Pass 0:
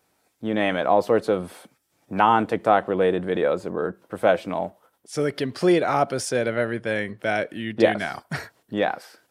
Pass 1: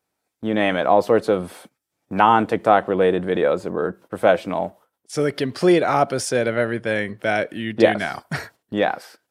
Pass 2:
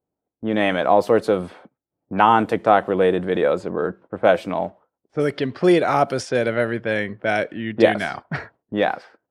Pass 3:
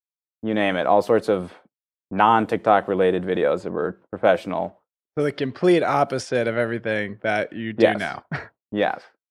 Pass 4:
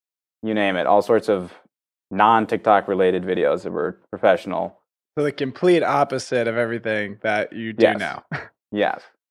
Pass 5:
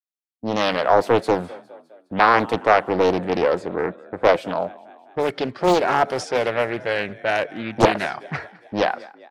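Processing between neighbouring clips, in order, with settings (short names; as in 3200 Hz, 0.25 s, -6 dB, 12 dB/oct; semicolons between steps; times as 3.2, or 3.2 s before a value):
gate -47 dBFS, range -13 dB; gain +3 dB
low-pass opened by the level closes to 570 Hz, open at -15.5 dBFS
expander -36 dBFS; gain -1.5 dB
low shelf 110 Hz -6 dB; gain +1.5 dB
spectral noise reduction 9 dB; frequency-shifting echo 0.205 s, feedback 58%, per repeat +34 Hz, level -22 dB; Doppler distortion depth 0.88 ms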